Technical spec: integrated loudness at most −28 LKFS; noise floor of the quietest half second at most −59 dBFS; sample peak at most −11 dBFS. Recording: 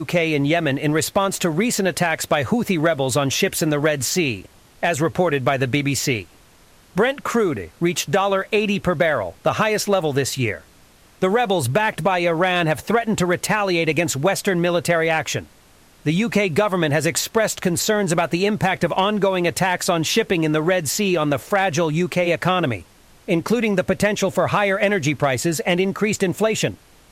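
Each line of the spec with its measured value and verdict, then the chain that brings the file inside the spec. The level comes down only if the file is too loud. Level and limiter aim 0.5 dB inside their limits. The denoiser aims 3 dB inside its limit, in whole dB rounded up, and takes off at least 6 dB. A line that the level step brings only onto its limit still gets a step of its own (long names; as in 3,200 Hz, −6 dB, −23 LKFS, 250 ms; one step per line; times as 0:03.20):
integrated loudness −20.0 LKFS: out of spec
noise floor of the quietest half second −51 dBFS: out of spec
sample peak −8.0 dBFS: out of spec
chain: level −8.5 dB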